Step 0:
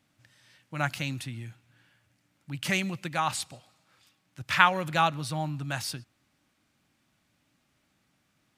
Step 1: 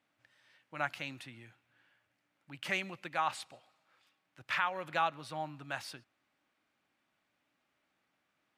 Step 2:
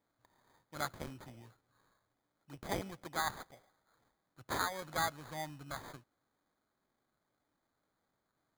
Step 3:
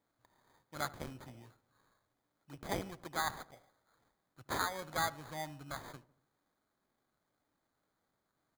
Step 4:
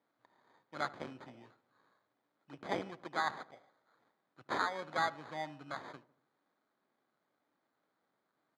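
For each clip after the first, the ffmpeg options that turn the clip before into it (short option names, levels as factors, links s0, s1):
-af "bass=f=250:g=-15,treble=f=4000:g=-11,alimiter=limit=0.178:level=0:latency=1:release=313,volume=0.631"
-af "lowshelf=f=130:g=6.5,acrusher=samples=16:mix=1:aa=0.000001,volume=0.668"
-filter_complex "[0:a]asplit=2[s0][s1];[s1]adelay=75,lowpass=f=1300:p=1,volume=0.133,asplit=2[s2][s3];[s3]adelay=75,lowpass=f=1300:p=1,volume=0.54,asplit=2[s4][s5];[s5]adelay=75,lowpass=f=1300:p=1,volume=0.54,asplit=2[s6][s7];[s7]adelay=75,lowpass=f=1300:p=1,volume=0.54,asplit=2[s8][s9];[s9]adelay=75,lowpass=f=1300:p=1,volume=0.54[s10];[s0][s2][s4][s6][s8][s10]amix=inputs=6:normalize=0"
-af "highpass=210,lowpass=3600,volume=1.26"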